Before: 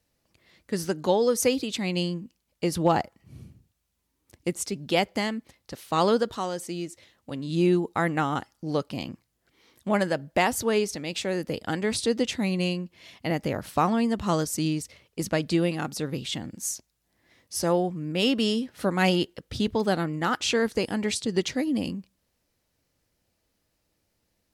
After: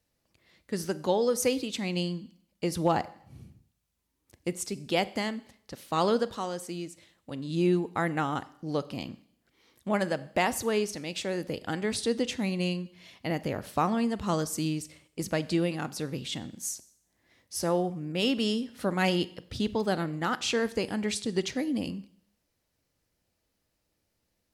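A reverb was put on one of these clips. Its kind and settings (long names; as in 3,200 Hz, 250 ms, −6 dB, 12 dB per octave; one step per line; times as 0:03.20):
four-comb reverb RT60 0.65 s, combs from 30 ms, DRR 16.5 dB
level −3.5 dB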